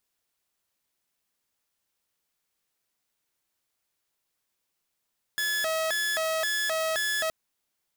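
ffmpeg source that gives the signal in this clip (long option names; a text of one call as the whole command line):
ffmpeg -f lavfi -i "aevalsrc='0.0708*(2*mod((1175.5*t+534.5/1.9*(0.5-abs(mod(1.9*t,1)-0.5))),1)-1)':duration=1.92:sample_rate=44100" out.wav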